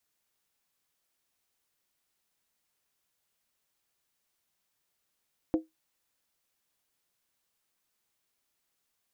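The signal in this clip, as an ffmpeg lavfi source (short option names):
-f lavfi -i "aevalsrc='0.112*pow(10,-3*t/0.17)*sin(2*PI*319*t)+0.0398*pow(10,-3*t/0.135)*sin(2*PI*508.5*t)+0.0141*pow(10,-3*t/0.116)*sin(2*PI*681.4*t)+0.00501*pow(10,-3*t/0.112)*sin(2*PI*732.4*t)+0.00178*pow(10,-3*t/0.104)*sin(2*PI*846.3*t)':d=0.63:s=44100"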